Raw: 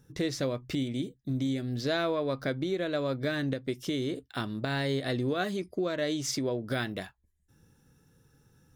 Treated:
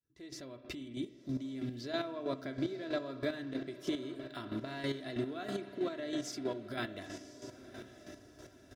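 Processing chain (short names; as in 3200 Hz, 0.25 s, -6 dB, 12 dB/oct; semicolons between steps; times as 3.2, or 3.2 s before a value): opening faded in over 2.04 s; HPF 47 Hz; high shelf 11000 Hz -5.5 dB; comb 3 ms, depth 60%; compressor 2.5:1, threshold -43 dBFS, peak gain reduction 13.5 dB; on a send: diffused feedback echo 0.991 s, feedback 45%, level -12 dB; on the sum: spring tank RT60 1.3 s, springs 30/50 ms, chirp 60 ms, DRR 8.5 dB; chopper 3.1 Hz, depth 60%, duty 25%; gain +5.5 dB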